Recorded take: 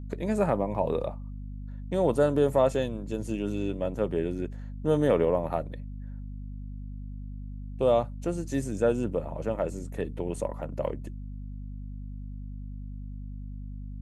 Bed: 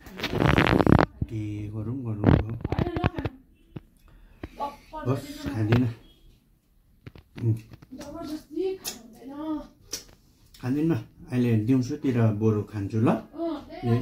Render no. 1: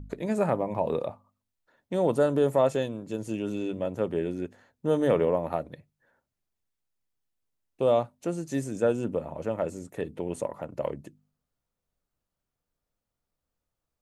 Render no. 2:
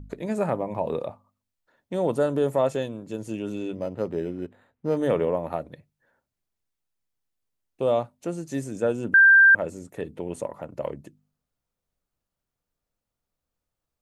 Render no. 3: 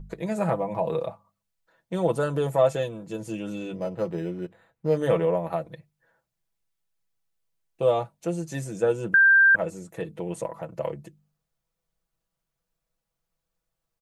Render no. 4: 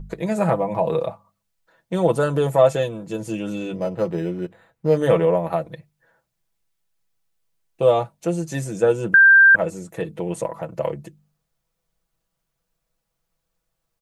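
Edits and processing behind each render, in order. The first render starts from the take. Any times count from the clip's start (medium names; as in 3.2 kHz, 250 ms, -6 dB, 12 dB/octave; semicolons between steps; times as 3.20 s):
de-hum 50 Hz, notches 5
3.75–4.97 s: decimation joined by straight lines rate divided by 8×; 9.14–9.55 s: bleep 1.58 kHz -10.5 dBFS
peaking EQ 290 Hz -8 dB 0.36 oct; comb 6.1 ms, depth 69%
trim +5.5 dB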